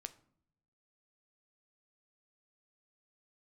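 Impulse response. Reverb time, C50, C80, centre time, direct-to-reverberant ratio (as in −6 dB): 0.65 s, 17.5 dB, 21.0 dB, 4 ms, 10.0 dB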